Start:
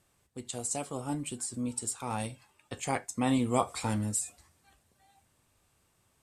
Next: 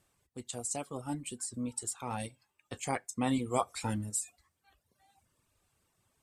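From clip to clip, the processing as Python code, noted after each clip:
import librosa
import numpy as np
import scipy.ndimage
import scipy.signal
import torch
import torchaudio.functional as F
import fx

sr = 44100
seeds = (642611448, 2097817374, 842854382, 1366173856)

y = fx.dereverb_blind(x, sr, rt60_s=0.95)
y = y * librosa.db_to_amplitude(-2.0)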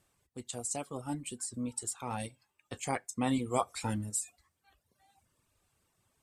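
y = x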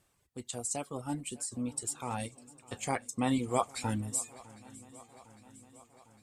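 y = fx.echo_swing(x, sr, ms=805, ratio=3, feedback_pct=61, wet_db=-21.5)
y = y * librosa.db_to_amplitude(1.0)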